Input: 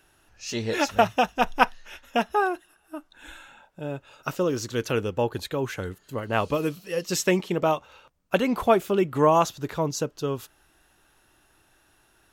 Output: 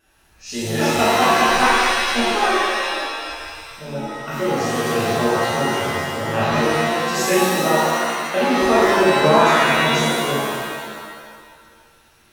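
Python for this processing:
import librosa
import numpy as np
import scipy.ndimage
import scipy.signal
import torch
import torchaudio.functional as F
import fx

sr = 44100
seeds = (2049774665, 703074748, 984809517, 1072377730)

y = fx.vibrato(x, sr, rate_hz=1.2, depth_cents=11.0)
y = fx.rev_shimmer(y, sr, seeds[0], rt60_s=1.7, semitones=7, shimmer_db=-2, drr_db=-10.0)
y = y * librosa.db_to_amplitude(-6.0)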